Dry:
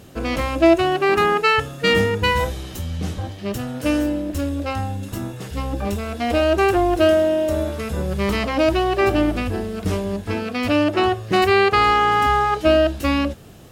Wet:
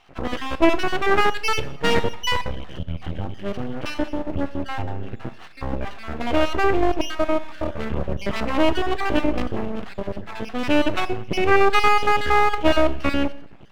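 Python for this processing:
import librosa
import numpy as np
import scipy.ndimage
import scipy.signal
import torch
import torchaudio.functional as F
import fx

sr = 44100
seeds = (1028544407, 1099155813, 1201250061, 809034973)

y = fx.spec_dropout(x, sr, seeds[0], share_pct=38)
y = scipy.signal.sosfilt(scipy.signal.ellip(4, 1.0, 40, 3100.0, 'lowpass', fs=sr, output='sos'), y)
y = np.maximum(y, 0.0)
y = fx.rev_schroeder(y, sr, rt60_s=0.64, comb_ms=29, drr_db=15.0)
y = y * 10.0 ** (3.5 / 20.0)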